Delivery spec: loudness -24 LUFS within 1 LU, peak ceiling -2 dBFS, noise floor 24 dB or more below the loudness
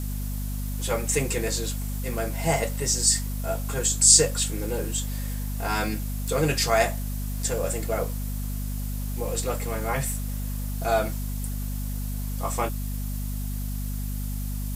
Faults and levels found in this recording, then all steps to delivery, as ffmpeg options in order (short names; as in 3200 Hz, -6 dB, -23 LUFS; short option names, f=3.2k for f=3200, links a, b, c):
hum 50 Hz; harmonics up to 250 Hz; hum level -27 dBFS; noise floor -30 dBFS; noise floor target -50 dBFS; loudness -26.0 LUFS; peak -1.0 dBFS; loudness target -24.0 LUFS
-> -af "bandreject=f=50:t=h:w=6,bandreject=f=100:t=h:w=6,bandreject=f=150:t=h:w=6,bandreject=f=200:t=h:w=6,bandreject=f=250:t=h:w=6"
-af "afftdn=nr=20:nf=-30"
-af "volume=2dB,alimiter=limit=-2dB:level=0:latency=1"